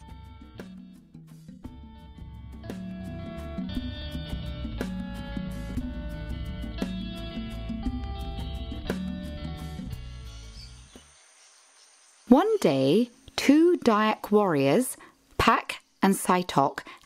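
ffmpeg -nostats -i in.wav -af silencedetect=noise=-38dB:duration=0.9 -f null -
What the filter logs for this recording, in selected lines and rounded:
silence_start: 10.97
silence_end: 12.29 | silence_duration: 1.32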